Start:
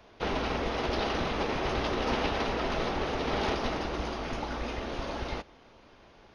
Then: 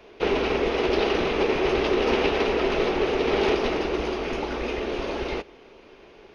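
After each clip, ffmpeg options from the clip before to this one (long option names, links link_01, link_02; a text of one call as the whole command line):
ffmpeg -i in.wav -af "equalizer=frequency=100:width_type=o:width=0.67:gain=-5,equalizer=frequency=400:width_type=o:width=0.67:gain=12,equalizer=frequency=2500:width_type=o:width=0.67:gain=7,volume=2dB" out.wav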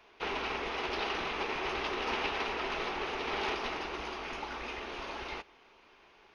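ffmpeg -i in.wav -af "lowshelf=frequency=690:width_type=q:width=1.5:gain=-8,volume=-7dB" out.wav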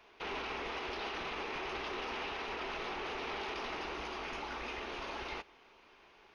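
ffmpeg -i in.wav -af "alimiter=level_in=6.5dB:limit=-24dB:level=0:latency=1:release=24,volume=-6.5dB,volume=-1dB" out.wav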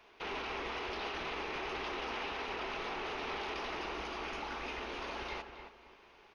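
ffmpeg -i in.wav -filter_complex "[0:a]asplit=2[link_01][link_02];[link_02]adelay=271,lowpass=frequency=2400:poles=1,volume=-8dB,asplit=2[link_03][link_04];[link_04]adelay=271,lowpass=frequency=2400:poles=1,volume=0.32,asplit=2[link_05][link_06];[link_06]adelay=271,lowpass=frequency=2400:poles=1,volume=0.32,asplit=2[link_07][link_08];[link_08]adelay=271,lowpass=frequency=2400:poles=1,volume=0.32[link_09];[link_01][link_03][link_05][link_07][link_09]amix=inputs=5:normalize=0" out.wav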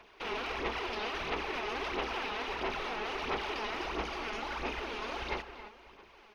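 ffmpeg -i in.wav -af "aphaser=in_gain=1:out_gain=1:delay=4.8:decay=0.52:speed=1.5:type=sinusoidal,volume=1.5dB" out.wav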